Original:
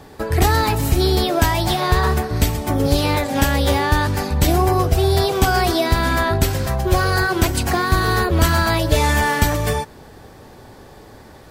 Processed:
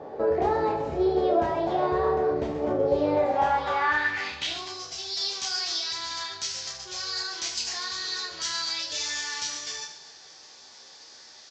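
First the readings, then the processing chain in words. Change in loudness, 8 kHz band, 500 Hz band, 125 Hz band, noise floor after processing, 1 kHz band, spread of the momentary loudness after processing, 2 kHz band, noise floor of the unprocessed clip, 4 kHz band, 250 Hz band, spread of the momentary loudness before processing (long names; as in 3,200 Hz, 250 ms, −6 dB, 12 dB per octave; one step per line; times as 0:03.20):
−9.0 dB, −6.0 dB, −5.5 dB, −24.0 dB, −49 dBFS, −8.5 dB, 22 LU, −10.0 dB, −43 dBFS, −4.5 dB, −11.5 dB, 4 LU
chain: in parallel at −3 dB: compressor whose output falls as the input rises −28 dBFS, ratio −1
on the sum: downsampling to 16,000 Hz
pitch vibrato 11 Hz 7.6 cents
double-tracking delay 13 ms −6.5 dB
on a send: reverse bouncing-ball delay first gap 30 ms, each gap 1.5×, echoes 5
on the sum: band-pass filter sweep 540 Hz → 5,400 Hz, 0:03.16–0:04.85
level −2 dB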